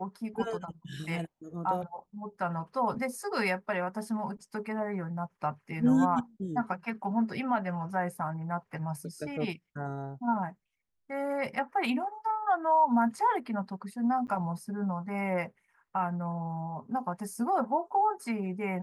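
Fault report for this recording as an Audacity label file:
14.270000	14.280000	drop-out 9.4 ms

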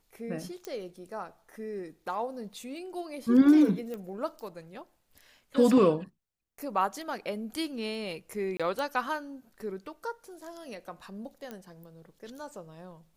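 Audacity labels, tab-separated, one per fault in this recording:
0.650000	0.650000	click −23 dBFS
3.940000	3.940000	click −26 dBFS
8.570000	8.600000	drop-out 26 ms
11.510000	11.510000	click −25 dBFS

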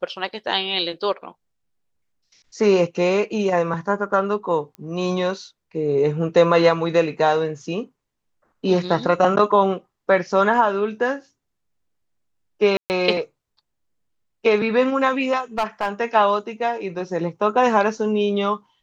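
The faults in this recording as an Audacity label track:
4.750000	4.750000	click −24 dBFS
12.770000	12.900000	drop-out 129 ms
15.580000	15.890000	clipping −16.5 dBFS

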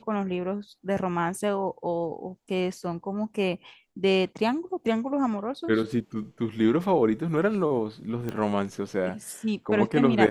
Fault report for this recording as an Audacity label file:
8.290000	8.290000	click −19 dBFS

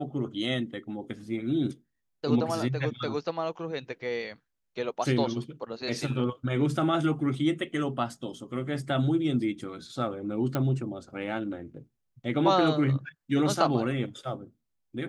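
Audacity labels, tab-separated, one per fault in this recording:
10.550000	10.550000	click −15 dBFS

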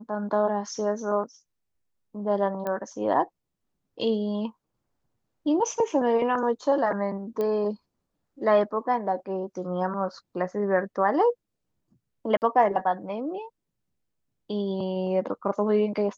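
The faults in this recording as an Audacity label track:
2.670000	2.670000	click −18 dBFS
7.410000	7.410000	click −18 dBFS
12.370000	12.420000	drop-out 49 ms

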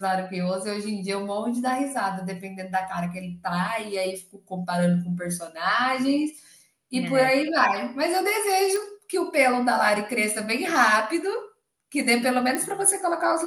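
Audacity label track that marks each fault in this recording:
8.760000	8.760000	click
12.550000	12.550000	click −12 dBFS

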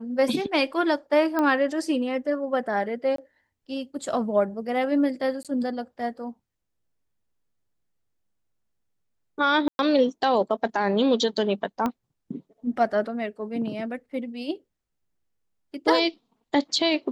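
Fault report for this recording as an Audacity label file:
1.390000	1.390000	click −13 dBFS
3.160000	3.180000	drop-out 23 ms
5.430000	5.450000	drop-out 17 ms
9.680000	9.790000	drop-out 111 ms
11.860000	11.860000	click −14 dBFS

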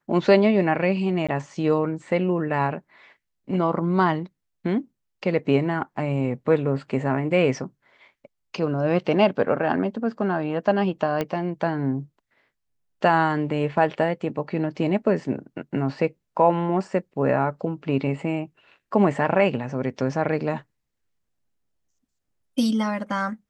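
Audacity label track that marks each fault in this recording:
1.270000	1.290000	drop-out 16 ms
11.210000	11.210000	click −12 dBFS

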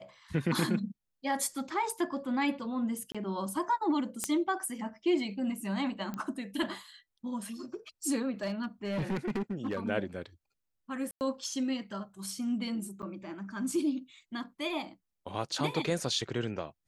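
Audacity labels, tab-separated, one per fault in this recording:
3.120000	3.150000	drop-out 26 ms
4.240000	4.240000	click −15 dBFS
6.140000	6.140000	click −24 dBFS
8.430000	9.790000	clipping −28.5 dBFS
11.110000	11.210000	drop-out 99 ms
13.020000	13.030000	drop-out 8.4 ms

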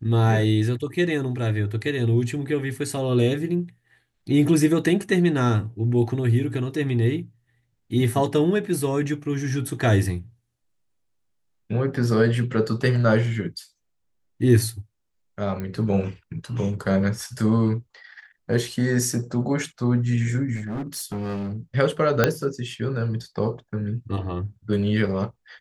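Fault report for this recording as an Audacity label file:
15.600000	15.600000	click −19 dBFS
20.550000	21.570000	clipping −26 dBFS
22.240000	22.240000	click −3 dBFS

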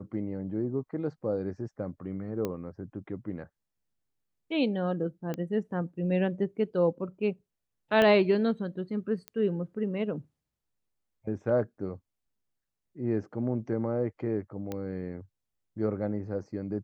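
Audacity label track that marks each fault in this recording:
2.450000	2.450000	click −18 dBFS
5.340000	5.340000	click −21 dBFS
8.020000	8.020000	click −13 dBFS
9.280000	9.280000	click −22 dBFS
14.720000	14.720000	click −21 dBFS

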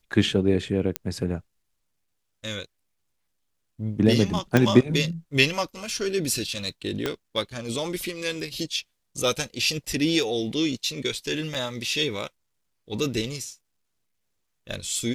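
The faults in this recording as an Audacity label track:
0.960000	0.960000	click −8 dBFS
4.570000	4.570000	click −6 dBFS
7.060000	7.060000	click −11 dBFS
11.540000	11.550000	drop-out 5.6 ms

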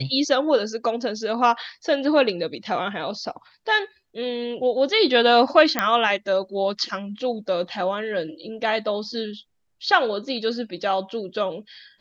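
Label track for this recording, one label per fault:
5.790000	5.790000	click −5 dBFS

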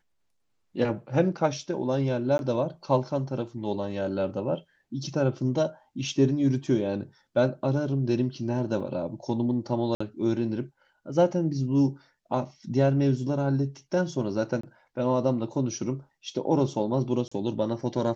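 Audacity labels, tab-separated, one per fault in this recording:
2.380000	2.390000	drop-out 11 ms
8.800000	8.800000	drop-out 3.8 ms
9.950000	10.010000	drop-out 55 ms
14.610000	14.630000	drop-out 24 ms
17.280000	17.320000	drop-out 35 ms

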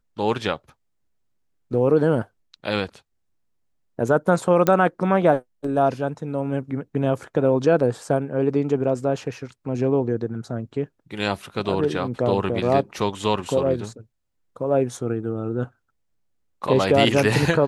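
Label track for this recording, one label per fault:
4.670000	4.670000	click −6 dBFS

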